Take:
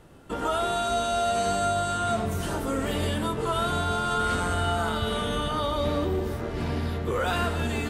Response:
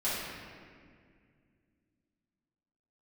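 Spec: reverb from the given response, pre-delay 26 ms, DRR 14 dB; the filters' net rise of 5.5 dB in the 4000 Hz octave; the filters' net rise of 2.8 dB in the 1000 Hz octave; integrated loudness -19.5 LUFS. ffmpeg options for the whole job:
-filter_complex "[0:a]equalizer=f=1k:t=o:g=4,equalizer=f=4k:t=o:g=6.5,asplit=2[a][b];[1:a]atrim=start_sample=2205,adelay=26[c];[b][c]afir=irnorm=-1:irlink=0,volume=-22.5dB[d];[a][d]amix=inputs=2:normalize=0,volume=5dB"

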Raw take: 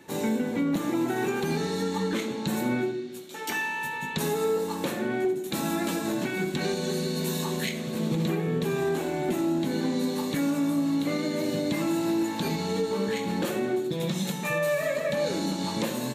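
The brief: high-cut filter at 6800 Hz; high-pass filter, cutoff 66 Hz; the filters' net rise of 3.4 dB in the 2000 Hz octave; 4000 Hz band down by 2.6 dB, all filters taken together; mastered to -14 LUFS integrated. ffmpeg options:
-af "highpass=66,lowpass=6.8k,equalizer=f=2k:t=o:g=5,equalizer=f=4k:t=o:g=-4,volume=14dB"

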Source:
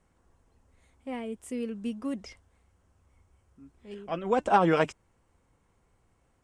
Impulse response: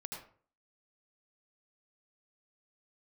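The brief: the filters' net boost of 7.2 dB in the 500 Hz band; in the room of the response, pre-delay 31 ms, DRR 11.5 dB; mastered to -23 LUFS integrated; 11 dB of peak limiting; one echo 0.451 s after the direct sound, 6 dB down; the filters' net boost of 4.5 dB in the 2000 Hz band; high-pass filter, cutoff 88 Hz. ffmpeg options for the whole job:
-filter_complex "[0:a]highpass=88,equalizer=f=500:t=o:g=8,equalizer=f=2k:t=o:g=5.5,alimiter=limit=-15.5dB:level=0:latency=1,aecho=1:1:451:0.501,asplit=2[a][b];[1:a]atrim=start_sample=2205,adelay=31[c];[b][c]afir=irnorm=-1:irlink=0,volume=-9.5dB[d];[a][d]amix=inputs=2:normalize=0,volume=6dB"

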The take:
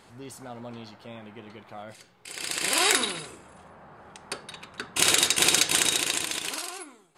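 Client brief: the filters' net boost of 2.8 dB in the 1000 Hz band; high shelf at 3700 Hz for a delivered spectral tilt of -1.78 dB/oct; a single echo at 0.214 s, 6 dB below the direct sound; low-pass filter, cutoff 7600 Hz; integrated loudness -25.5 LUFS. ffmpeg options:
-af "lowpass=7.6k,equalizer=f=1k:t=o:g=3,highshelf=f=3.7k:g=6.5,aecho=1:1:214:0.501,volume=-6dB"

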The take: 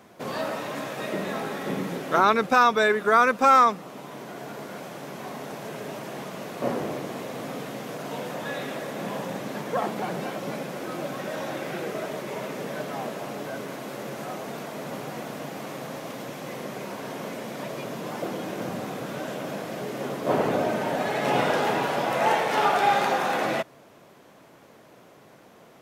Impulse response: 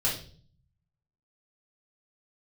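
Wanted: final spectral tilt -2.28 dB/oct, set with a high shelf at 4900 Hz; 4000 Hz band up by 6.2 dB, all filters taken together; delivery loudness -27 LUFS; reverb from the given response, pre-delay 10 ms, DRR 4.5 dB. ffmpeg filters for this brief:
-filter_complex "[0:a]equalizer=f=4k:t=o:g=9,highshelf=f=4.9k:g=-3,asplit=2[a][b];[1:a]atrim=start_sample=2205,adelay=10[c];[b][c]afir=irnorm=-1:irlink=0,volume=-13dB[d];[a][d]amix=inputs=2:normalize=0,volume=-2dB"

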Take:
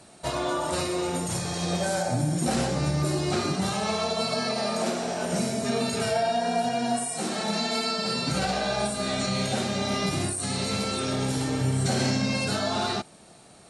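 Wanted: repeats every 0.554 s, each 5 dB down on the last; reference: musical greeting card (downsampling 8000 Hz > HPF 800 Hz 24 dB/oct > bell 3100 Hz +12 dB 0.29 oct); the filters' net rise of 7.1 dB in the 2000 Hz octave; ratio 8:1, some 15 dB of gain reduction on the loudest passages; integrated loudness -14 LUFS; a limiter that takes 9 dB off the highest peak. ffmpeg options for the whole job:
-af "equalizer=f=2k:t=o:g=7.5,acompressor=threshold=-37dB:ratio=8,alimiter=level_in=9.5dB:limit=-24dB:level=0:latency=1,volume=-9.5dB,aecho=1:1:554|1108|1662|2216|2770|3324|3878:0.562|0.315|0.176|0.0988|0.0553|0.031|0.0173,aresample=8000,aresample=44100,highpass=f=800:w=0.5412,highpass=f=800:w=1.3066,equalizer=f=3.1k:t=o:w=0.29:g=12,volume=28dB"

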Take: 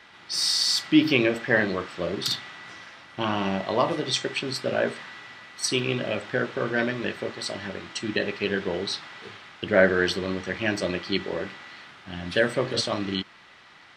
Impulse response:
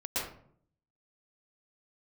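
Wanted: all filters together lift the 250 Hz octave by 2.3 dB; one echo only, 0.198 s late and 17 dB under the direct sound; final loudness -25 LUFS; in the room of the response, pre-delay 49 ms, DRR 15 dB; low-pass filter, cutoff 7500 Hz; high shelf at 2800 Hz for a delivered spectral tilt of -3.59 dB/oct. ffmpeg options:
-filter_complex "[0:a]lowpass=7.5k,equalizer=f=250:t=o:g=3,highshelf=f=2.8k:g=4.5,aecho=1:1:198:0.141,asplit=2[a][b];[1:a]atrim=start_sample=2205,adelay=49[c];[b][c]afir=irnorm=-1:irlink=0,volume=-21dB[d];[a][d]amix=inputs=2:normalize=0,volume=-1.5dB"

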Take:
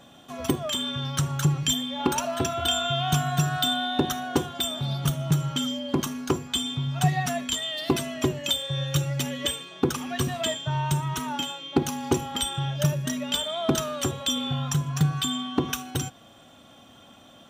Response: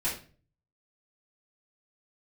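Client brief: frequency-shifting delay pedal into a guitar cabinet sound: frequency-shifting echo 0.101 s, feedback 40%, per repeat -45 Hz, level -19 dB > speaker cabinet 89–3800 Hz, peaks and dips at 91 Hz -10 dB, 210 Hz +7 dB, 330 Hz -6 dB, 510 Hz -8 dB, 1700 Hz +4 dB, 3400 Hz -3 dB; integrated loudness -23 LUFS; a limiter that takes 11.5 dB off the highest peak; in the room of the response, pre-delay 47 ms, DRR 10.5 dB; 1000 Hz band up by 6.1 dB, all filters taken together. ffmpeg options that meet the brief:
-filter_complex "[0:a]equalizer=f=1k:t=o:g=9,alimiter=limit=-15.5dB:level=0:latency=1,asplit=2[a][b];[1:a]atrim=start_sample=2205,adelay=47[c];[b][c]afir=irnorm=-1:irlink=0,volume=-17.5dB[d];[a][d]amix=inputs=2:normalize=0,asplit=4[e][f][g][h];[f]adelay=101,afreqshift=-45,volume=-19dB[i];[g]adelay=202,afreqshift=-90,volume=-27dB[j];[h]adelay=303,afreqshift=-135,volume=-34.9dB[k];[e][i][j][k]amix=inputs=4:normalize=0,highpass=89,equalizer=f=91:t=q:w=4:g=-10,equalizer=f=210:t=q:w=4:g=7,equalizer=f=330:t=q:w=4:g=-6,equalizer=f=510:t=q:w=4:g=-8,equalizer=f=1.7k:t=q:w=4:g=4,equalizer=f=3.4k:t=q:w=4:g=-3,lowpass=f=3.8k:w=0.5412,lowpass=f=3.8k:w=1.3066,volume=4.5dB"

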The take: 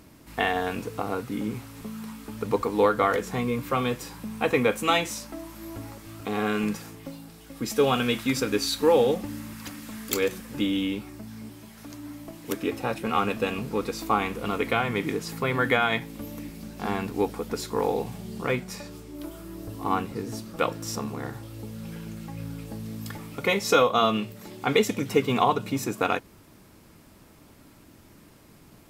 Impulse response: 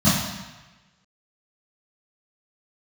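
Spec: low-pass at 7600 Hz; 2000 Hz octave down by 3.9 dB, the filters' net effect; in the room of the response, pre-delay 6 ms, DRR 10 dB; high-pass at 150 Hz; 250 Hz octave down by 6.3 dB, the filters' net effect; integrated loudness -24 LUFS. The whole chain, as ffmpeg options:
-filter_complex "[0:a]highpass=150,lowpass=7.6k,equalizer=f=250:t=o:g=-7,equalizer=f=2k:t=o:g=-5,asplit=2[a][b];[1:a]atrim=start_sample=2205,adelay=6[c];[b][c]afir=irnorm=-1:irlink=0,volume=-29dB[d];[a][d]amix=inputs=2:normalize=0,volume=4.5dB"

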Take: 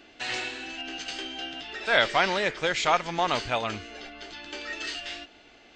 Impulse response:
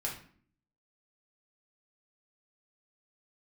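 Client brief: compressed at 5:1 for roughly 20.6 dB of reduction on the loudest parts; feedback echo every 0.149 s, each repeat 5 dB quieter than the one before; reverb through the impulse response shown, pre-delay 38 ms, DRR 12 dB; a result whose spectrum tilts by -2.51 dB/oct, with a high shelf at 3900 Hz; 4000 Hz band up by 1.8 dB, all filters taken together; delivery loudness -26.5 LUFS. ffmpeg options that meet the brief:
-filter_complex "[0:a]highshelf=f=3.9k:g=-6.5,equalizer=f=4k:t=o:g=6,acompressor=threshold=-41dB:ratio=5,aecho=1:1:149|298|447|596|745|894|1043:0.562|0.315|0.176|0.0988|0.0553|0.031|0.0173,asplit=2[a][b];[1:a]atrim=start_sample=2205,adelay=38[c];[b][c]afir=irnorm=-1:irlink=0,volume=-14.5dB[d];[a][d]amix=inputs=2:normalize=0,volume=13.5dB"

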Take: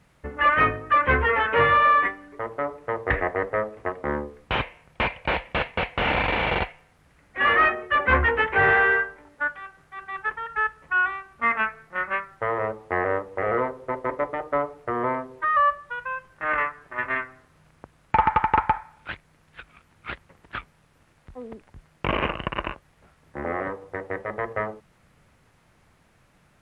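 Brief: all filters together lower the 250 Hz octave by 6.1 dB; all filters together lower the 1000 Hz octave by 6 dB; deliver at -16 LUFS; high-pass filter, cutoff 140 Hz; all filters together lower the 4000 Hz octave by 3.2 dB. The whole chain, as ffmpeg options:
-af "highpass=140,equalizer=f=250:t=o:g=-7.5,equalizer=f=1k:t=o:g=-7,equalizer=f=4k:t=o:g=-4.5,volume=12dB"

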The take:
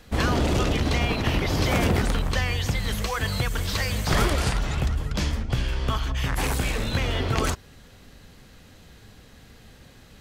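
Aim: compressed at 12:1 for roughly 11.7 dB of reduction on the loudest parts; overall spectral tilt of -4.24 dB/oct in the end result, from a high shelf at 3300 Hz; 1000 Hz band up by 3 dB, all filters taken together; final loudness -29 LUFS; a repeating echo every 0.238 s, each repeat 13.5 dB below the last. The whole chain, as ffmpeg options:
-af "equalizer=f=1k:t=o:g=3.5,highshelf=f=3.3k:g=3.5,acompressor=threshold=-29dB:ratio=12,aecho=1:1:238|476:0.211|0.0444,volume=4.5dB"

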